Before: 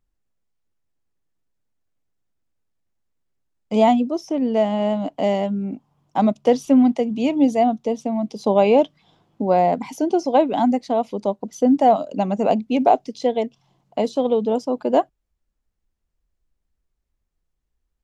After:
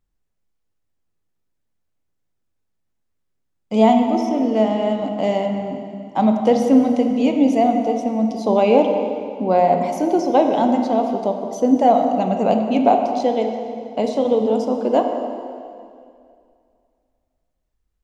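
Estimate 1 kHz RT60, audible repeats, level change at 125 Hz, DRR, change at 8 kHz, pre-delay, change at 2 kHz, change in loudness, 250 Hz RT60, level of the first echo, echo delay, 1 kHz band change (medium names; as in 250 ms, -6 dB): 2.2 s, no echo, +1.5 dB, 3.5 dB, no reading, 8 ms, +1.5 dB, +1.5 dB, 2.4 s, no echo, no echo, +2.0 dB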